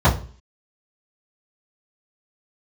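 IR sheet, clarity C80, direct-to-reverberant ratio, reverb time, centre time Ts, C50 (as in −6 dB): 16.5 dB, −10.0 dB, 0.40 s, 20 ms, 12.0 dB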